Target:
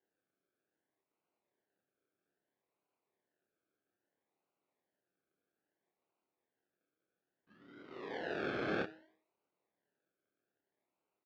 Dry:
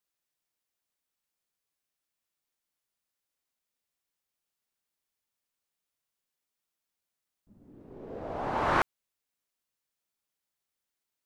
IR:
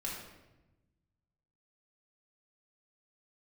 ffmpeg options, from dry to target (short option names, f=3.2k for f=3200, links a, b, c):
-filter_complex "[0:a]bandreject=f=316.8:t=h:w=4,bandreject=f=633.6:t=h:w=4,bandreject=f=950.4:t=h:w=4,bandreject=f=1.2672k:t=h:w=4,bandreject=f=1.584k:t=h:w=4,bandreject=f=1.9008k:t=h:w=4,bandreject=f=2.2176k:t=h:w=4,bandreject=f=2.5344k:t=h:w=4,bandreject=f=2.8512k:t=h:w=4,bandreject=f=3.168k:t=h:w=4,bandreject=f=3.4848k:t=h:w=4,bandreject=f=3.8016k:t=h:w=4,bandreject=f=4.1184k:t=h:w=4,bandreject=f=4.4352k:t=h:w=4,bandreject=f=4.752k:t=h:w=4,bandreject=f=5.0688k:t=h:w=4,bandreject=f=5.3856k:t=h:w=4,bandreject=f=5.7024k:t=h:w=4,bandreject=f=6.0192k:t=h:w=4,bandreject=f=6.336k:t=h:w=4,bandreject=f=6.6528k:t=h:w=4,bandreject=f=6.9696k:t=h:w=4,bandreject=f=7.2864k:t=h:w=4,bandreject=f=7.6032k:t=h:w=4,bandreject=f=7.92k:t=h:w=4,bandreject=f=8.2368k:t=h:w=4,bandreject=f=8.5536k:t=h:w=4,bandreject=f=8.8704k:t=h:w=4,bandreject=f=9.1872k:t=h:w=4,acrossover=split=910[a][b];[b]acompressor=threshold=-41dB:ratio=6[c];[a][c]amix=inputs=2:normalize=0,acrusher=samples=36:mix=1:aa=0.000001:lfo=1:lforange=21.6:lforate=0.61,asplit=2[d][e];[e]aeval=exprs='0.0211*(abs(mod(val(0)/0.0211+3,4)-2)-1)':c=same,volume=-11dB[f];[d][f]amix=inputs=2:normalize=0,highpass=210,equalizer=f=220:t=q:w=4:g=-4,equalizer=f=370:t=q:w=4:g=3,equalizer=f=1.6k:t=q:w=4:g=8,lowpass=f=4k:w=0.5412,lowpass=f=4k:w=1.3066,aecho=1:1:28|38:0.668|0.282,volume=-6dB"